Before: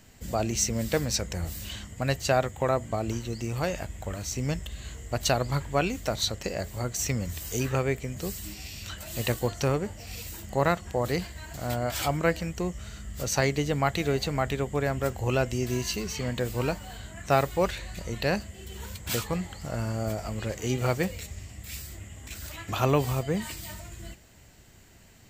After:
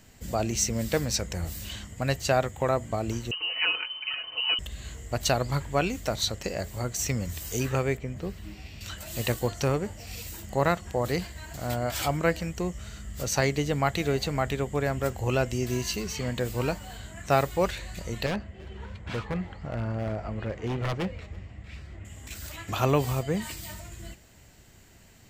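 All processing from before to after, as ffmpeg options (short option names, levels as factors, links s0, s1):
-filter_complex "[0:a]asettb=1/sr,asplit=3[s0][s1][s2];[s0]atrim=end=3.314[s3];[s1]atrim=start=3.31:end=4.59,asetpts=PTS-STARTPTS,afade=t=in:d=0.004:c=qsin,afade=t=out:st=1.276:d=0.004:c=qsin,aecho=1:1:5:0.94,atrim=end_sample=56448,lowpass=f=2600:t=q:w=0.5098,lowpass=f=2600:t=q:w=0.6013,lowpass=f=2600:t=q:w=0.9,lowpass=f=2600:t=q:w=2.563,afreqshift=-3100[s4];[s2]atrim=start=4.586[s5];[s3][s4]acrossfade=d=0.004:c1=hsin:c2=qsin[s6];[s6][s5]acrossfade=d=0.004:c1=qsin:c2=hsin,asettb=1/sr,asplit=3[s7][s8][s9];[s7]atrim=end=7.974[s10];[s8]atrim=start=7.97:end=8.81,asetpts=PTS-STARTPTS,afade=t=in:d=0.004:c=qsin,afade=t=out:st=0.836:d=0.004:c=qsin,acrossover=split=4200[s11][s12];[s12]acompressor=threshold=0.00316:ratio=4:attack=1:release=60[s13];[s11][s13]amix=inputs=2:normalize=0,highshelf=f=3500:g=-10.5[s14];[s9]atrim=start=8.806[s15];[s10][s14]acrossfade=d=0.004:c1=hsin:c2=qsin[s16];[s16][s15]acrossfade=d=0.004:c1=qsin:c2=hsin,asettb=1/sr,asplit=3[s17][s18][s19];[s17]atrim=end=18.264[s20];[s18]atrim=start=18.26:end=22.05,asetpts=PTS-STARTPTS,afade=t=in:d=0.004:c=qsin,afade=t=out:st=3.786:d=0.004:c=qsin,lowpass=2200,aeval=exprs='0.0668*(abs(mod(val(0)/0.0668+3,4)-2)-1)':c=same,aecho=1:1:335:0.0668,atrim=end_sample=167139[s21];[s19]atrim=start=22.046[s22];[s20][s21]acrossfade=d=0.004:c1=hsin:c2=qsin[s23];[s23][s22]acrossfade=d=0.004:c1=qsin:c2=hsin"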